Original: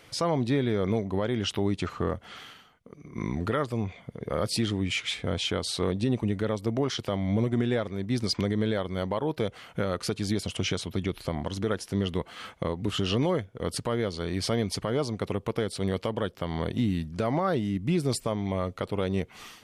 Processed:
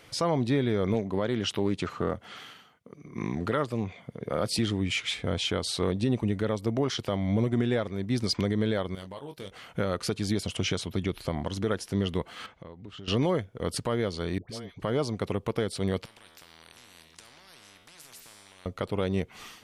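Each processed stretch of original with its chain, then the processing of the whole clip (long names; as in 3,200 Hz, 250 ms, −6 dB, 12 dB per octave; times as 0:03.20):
0:00.94–0:04.59: high-pass filter 100 Hz + highs frequency-modulated by the lows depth 0.14 ms
0:08.95–0:09.51: first-order pre-emphasis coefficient 0.8 + double-tracking delay 21 ms −7 dB + highs frequency-modulated by the lows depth 0.12 ms
0:12.46–0:13.08: low-pass filter 5,100 Hz + downward compressor 2 to 1, threshold −53 dBFS
0:14.38–0:14.80: noise gate −30 dBFS, range −9 dB + downward compressor 8 to 1, threshold −36 dBFS + all-pass dispersion highs, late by 108 ms, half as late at 760 Hz
0:16.05–0:18.66: downward compressor 2.5 to 1, threshold −29 dBFS + tuned comb filter 81 Hz, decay 0.78 s, mix 70% + every bin compressed towards the loudest bin 10 to 1
whole clip: no processing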